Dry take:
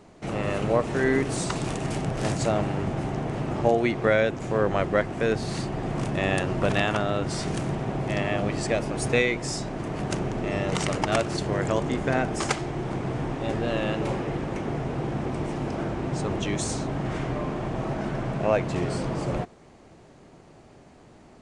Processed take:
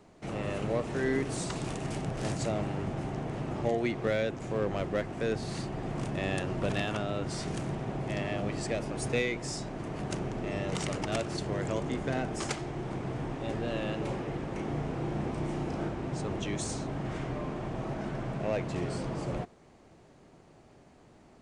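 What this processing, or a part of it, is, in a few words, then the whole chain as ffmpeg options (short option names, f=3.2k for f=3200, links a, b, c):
one-band saturation: -filter_complex "[0:a]asettb=1/sr,asplit=3[a][b][c];[a]atrim=end=14.544[d];[b]atrim=start=14.54:end=15.89,asetpts=PTS-STARTPTS,afade=t=in:d=0.004:c=qsin,afade=t=out:st=1.346:d=0.004:c=qsin,asplit=2[e][f];[f]adelay=34,volume=-4dB[g];[e][g]amix=inputs=2:normalize=0,atrim=end_sample=59535[h];[c]atrim=start=15.886[i];[d][h]acrossfade=d=0.004:c1=hsin:c2=qsin[j];[j][i]acrossfade=d=0.004:c1=qsin:c2=hsin,acrossover=split=560|2300[k][l][m];[l]asoftclip=type=tanh:threshold=-28.5dB[n];[k][n][m]amix=inputs=3:normalize=0,volume=-6dB"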